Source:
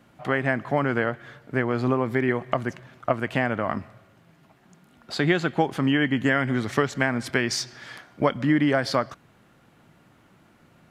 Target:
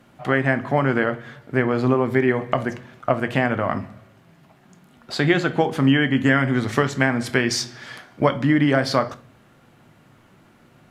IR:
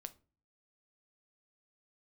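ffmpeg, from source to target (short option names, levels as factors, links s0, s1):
-filter_complex "[1:a]atrim=start_sample=2205,asetrate=35721,aresample=44100[s0];[0:a][s0]afir=irnorm=-1:irlink=0,volume=2.37"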